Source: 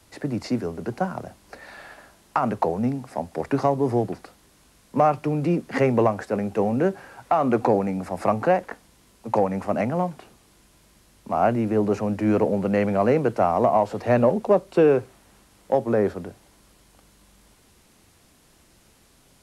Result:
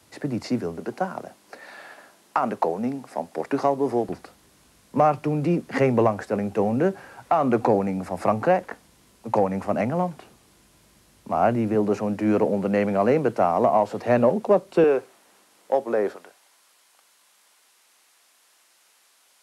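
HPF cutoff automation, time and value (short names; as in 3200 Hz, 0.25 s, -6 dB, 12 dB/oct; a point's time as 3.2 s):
99 Hz
from 0.8 s 230 Hz
from 4.09 s 57 Hz
from 11.75 s 130 Hz
from 14.84 s 360 Hz
from 16.16 s 870 Hz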